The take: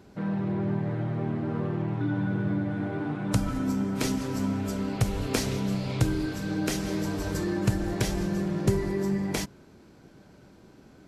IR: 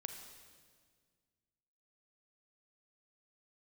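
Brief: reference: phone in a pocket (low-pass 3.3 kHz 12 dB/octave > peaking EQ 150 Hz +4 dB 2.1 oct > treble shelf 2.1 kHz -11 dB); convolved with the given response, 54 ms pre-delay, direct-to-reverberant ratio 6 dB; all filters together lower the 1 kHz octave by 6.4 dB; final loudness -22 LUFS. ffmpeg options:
-filter_complex "[0:a]equalizer=f=1000:t=o:g=-6.5,asplit=2[s0][s1];[1:a]atrim=start_sample=2205,adelay=54[s2];[s1][s2]afir=irnorm=-1:irlink=0,volume=0.668[s3];[s0][s3]amix=inputs=2:normalize=0,lowpass=3300,equalizer=f=150:t=o:w=2.1:g=4,highshelf=f=2100:g=-11,volume=1.68"

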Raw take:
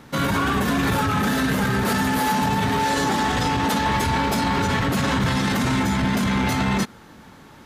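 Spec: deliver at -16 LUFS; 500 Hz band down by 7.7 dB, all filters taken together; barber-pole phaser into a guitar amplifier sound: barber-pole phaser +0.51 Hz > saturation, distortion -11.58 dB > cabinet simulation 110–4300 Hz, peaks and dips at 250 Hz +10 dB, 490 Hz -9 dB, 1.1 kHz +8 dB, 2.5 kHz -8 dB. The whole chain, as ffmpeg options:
-filter_complex "[0:a]equalizer=f=500:t=o:g=-7,asplit=2[s0][s1];[s1]afreqshift=0.51[s2];[s0][s2]amix=inputs=2:normalize=1,asoftclip=threshold=0.0562,highpass=110,equalizer=f=250:t=q:w=4:g=10,equalizer=f=490:t=q:w=4:g=-9,equalizer=f=1100:t=q:w=4:g=8,equalizer=f=2500:t=q:w=4:g=-8,lowpass=f=4300:w=0.5412,lowpass=f=4300:w=1.3066,volume=3.55"

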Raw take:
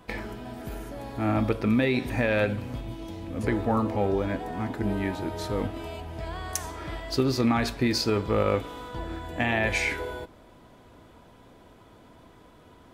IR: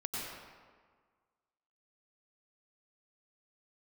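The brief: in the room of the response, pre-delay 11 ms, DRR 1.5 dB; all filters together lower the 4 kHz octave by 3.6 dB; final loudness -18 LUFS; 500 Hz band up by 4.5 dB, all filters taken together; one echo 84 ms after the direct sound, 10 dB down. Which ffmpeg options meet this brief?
-filter_complex "[0:a]equalizer=f=500:t=o:g=5.5,equalizer=f=4000:t=o:g=-4.5,aecho=1:1:84:0.316,asplit=2[s0][s1];[1:a]atrim=start_sample=2205,adelay=11[s2];[s1][s2]afir=irnorm=-1:irlink=0,volume=0.596[s3];[s0][s3]amix=inputs=2:normalize=0,volume=1.88"

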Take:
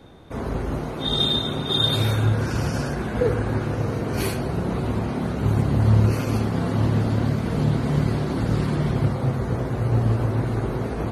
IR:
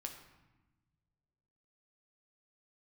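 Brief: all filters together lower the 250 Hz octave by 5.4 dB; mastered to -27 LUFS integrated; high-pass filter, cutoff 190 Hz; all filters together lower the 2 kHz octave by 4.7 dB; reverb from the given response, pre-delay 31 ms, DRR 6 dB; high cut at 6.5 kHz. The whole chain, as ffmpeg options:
-filter_complex "[0:a]highpass=190,lowpass=6500,equalizer=f=250:t=o:g=-4.5,equalizer=f=2000:t=o:g=-6.5,asplit=2[s0][s1];[1:a]atrim=start_sample=2205,adelay=31[s2];[s1][s2]afir=irnorm=-1:irlink=0,volume=0.668[s3];[s0][s3]amix=inputs=2:normalize=0,volume=1.12"

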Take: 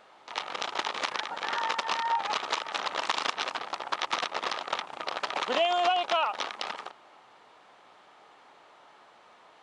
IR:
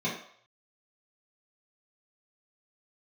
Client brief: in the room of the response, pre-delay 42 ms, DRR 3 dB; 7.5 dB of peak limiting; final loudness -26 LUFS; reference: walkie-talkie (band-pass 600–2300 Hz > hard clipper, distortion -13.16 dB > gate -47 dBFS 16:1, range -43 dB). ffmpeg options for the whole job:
-filter_complex "[0:a]alimiter=limit=0.0944:level=0:latency=1,asplit=2[s0][s1];[1:a]atrim=start_sample=2205,adelay=42[s2];[s1][s2]afir=irnorm=-1:irlink=0,volume=0.266[s3];[s0][s3]amix=inputs=2:normalize=0,highpass=600,lowpass=2300,asoftclip=type=hard:threshold=0.0447,agate=range=0.00708:threshold=0.00447:ratio=16,volume=2.66"

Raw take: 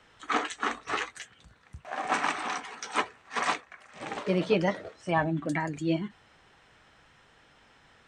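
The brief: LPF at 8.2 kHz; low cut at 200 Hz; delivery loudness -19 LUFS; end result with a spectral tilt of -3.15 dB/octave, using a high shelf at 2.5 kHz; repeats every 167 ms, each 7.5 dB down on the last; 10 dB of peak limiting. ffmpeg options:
-af "highpass=200,lowpass=8200,highshelf=f=2500:g=8,alimiter=limit=0.106:level=0:latency=1,aecho=1:1:167|334|501|668|835:0.422|0.177|0.0744|0.0312|0.0131,volume=4.47"

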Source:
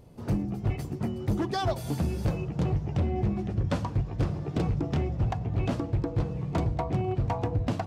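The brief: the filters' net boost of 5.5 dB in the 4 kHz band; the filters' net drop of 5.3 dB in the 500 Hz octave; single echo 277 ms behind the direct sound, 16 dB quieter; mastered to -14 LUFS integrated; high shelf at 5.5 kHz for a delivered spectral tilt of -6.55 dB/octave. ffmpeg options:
-af "equalizer=f=500:t=o:g=-8,equalizer=f=4000:t=o:g=5,highshelf=f=5500:g=5,aecho=1:1:277:0.158,volume=6.68"

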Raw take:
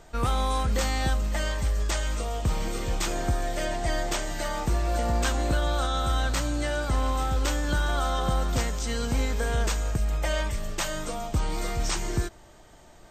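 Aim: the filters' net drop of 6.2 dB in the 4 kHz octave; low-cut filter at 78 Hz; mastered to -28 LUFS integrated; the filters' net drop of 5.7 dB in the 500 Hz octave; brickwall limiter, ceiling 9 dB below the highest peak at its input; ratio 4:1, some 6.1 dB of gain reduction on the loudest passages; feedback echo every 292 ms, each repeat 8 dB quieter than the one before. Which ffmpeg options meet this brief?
-af "highpass=78,equalizer=f=500:t=o:g=-7.5,equalizer=f=4000:t=o:g=-8,acompressor=threshold=0.0282:ratio=4,alimiter=level_in=1.78:limit=0.0631:level=0:latency=1,volume=0.562,aecho=1:1:292|584|876|1168|1460:0.398|0.159|0.0637|0.0255|0.0102,volume=3.16"

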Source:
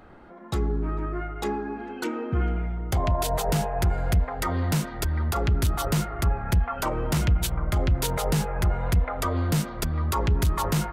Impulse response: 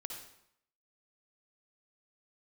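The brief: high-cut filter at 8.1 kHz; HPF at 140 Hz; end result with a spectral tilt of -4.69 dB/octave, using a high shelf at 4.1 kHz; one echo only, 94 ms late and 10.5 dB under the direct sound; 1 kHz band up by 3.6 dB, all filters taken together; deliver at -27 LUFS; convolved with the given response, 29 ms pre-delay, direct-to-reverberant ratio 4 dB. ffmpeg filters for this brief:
-filter_complex "[0:a]highpass=140,lowpass=8100,equalizer=f=1000:t=o:g=4.5,highshelf=f=4100:g=3.5,aecho=1:1:94:0.299,asplit=2[s0][s1];[1:a]atrim=start_sample=2205,adelay=29[s2];[s1][s2]afir=irnorm=-1:irlink=0,volume=0.794[s3];[s0][s3]amix=inputs=2:normalize=0,volume=0.944"

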